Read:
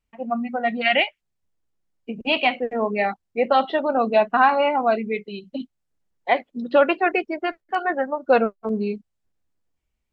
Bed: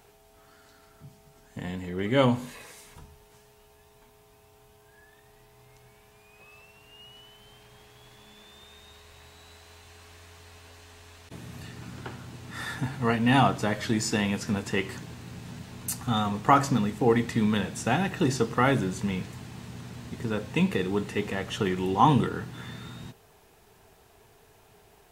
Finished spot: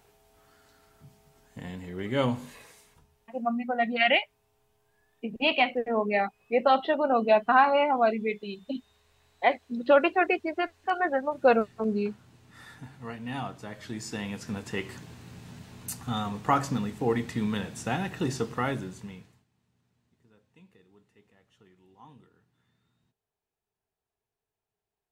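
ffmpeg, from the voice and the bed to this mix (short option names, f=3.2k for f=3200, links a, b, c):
-filter_complex "[0:a]adelay=3150,volume=-3.5dB[a];[1:a]volume=5dB,afade=t=out:st=2.59:d=0.45:silence=0.334965,afade=t=in:st=13.64:d=1.24:silence=0.334965,afade=t=out:st=18.43:d=1.02:silence=0.0398107[b];[a][b]amix=inputs=2:normalize=0"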